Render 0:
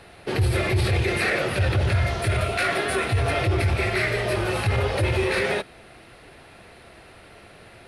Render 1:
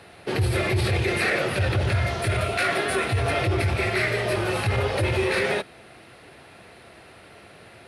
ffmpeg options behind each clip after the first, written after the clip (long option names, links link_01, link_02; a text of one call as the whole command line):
ffmpeg -i in.wav -af "highpass=80" out.wav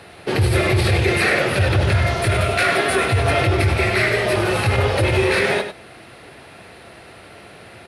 ffmpeg -i in.wav -af "aecho=1:1:98:0.335,volume=5.5dB" out.wav